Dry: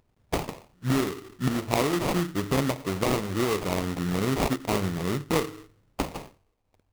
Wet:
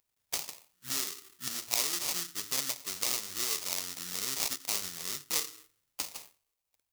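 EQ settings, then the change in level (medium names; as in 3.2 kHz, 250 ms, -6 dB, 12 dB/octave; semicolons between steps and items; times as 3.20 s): pre-emphasis filter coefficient 0.97; dynamic bell 5.5 kHz, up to +7 dB, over -53 dBFS, Q 1.2; +2.5 dB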